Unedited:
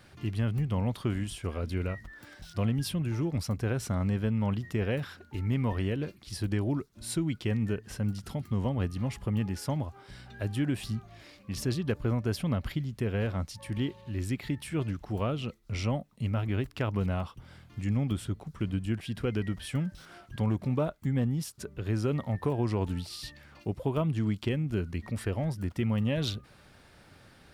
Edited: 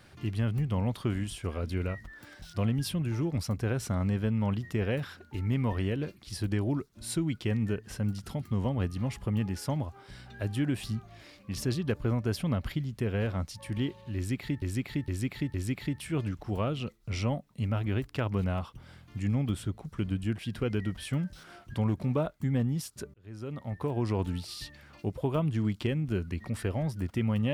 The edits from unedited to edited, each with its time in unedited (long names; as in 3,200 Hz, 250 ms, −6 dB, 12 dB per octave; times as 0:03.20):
0:14.16–0:14.62: repeat, 4 plays
0:21.76–0:22.74: fade in